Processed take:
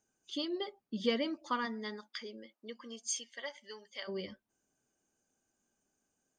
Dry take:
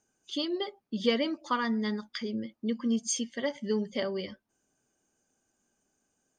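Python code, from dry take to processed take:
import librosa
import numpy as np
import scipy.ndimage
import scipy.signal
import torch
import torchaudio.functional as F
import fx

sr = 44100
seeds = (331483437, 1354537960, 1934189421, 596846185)

y = fx.highpass(x, sr, hz=fx.line((1.65, 310.0), (4.07, 1200.0)), slope=12, at=(1.65, 4.07), fade=0.02)
y = y * librosa.db_to_amplitude(-5.0)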